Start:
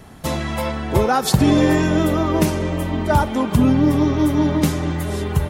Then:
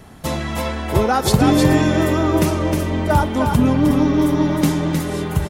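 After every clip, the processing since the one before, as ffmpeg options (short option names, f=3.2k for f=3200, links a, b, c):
-af "aecho=1:1:311:0.562"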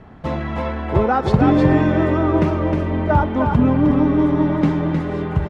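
-af "lowpass=2k"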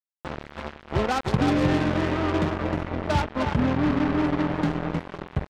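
-af "acrusher=bits=2:mix=0:aa=0.5,volume=-8dB"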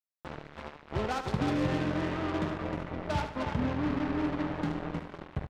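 -af "aecho=1:1:75|150|225|300:0.335|0.121|0.0434|0.0156,volume=-8dB"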